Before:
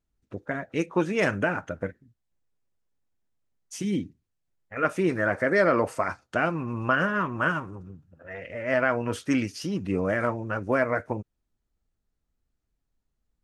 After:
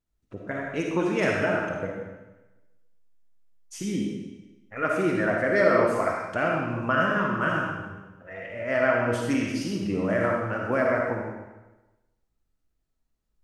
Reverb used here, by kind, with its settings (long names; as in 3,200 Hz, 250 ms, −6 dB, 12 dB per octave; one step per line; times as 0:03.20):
comb and all-pass reverb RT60 1.1 s, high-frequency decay 0.95×, pre-delay 15 ms, DRR −1 dB
level −2.5 dB